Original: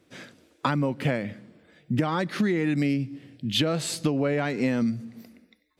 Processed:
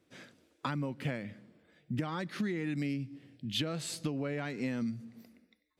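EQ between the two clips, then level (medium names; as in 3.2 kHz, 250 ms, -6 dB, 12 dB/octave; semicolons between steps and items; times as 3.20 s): dynamic bell 610 Hz, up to -4 dB, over -37 dBFS, Q 0.73; -8.5 dB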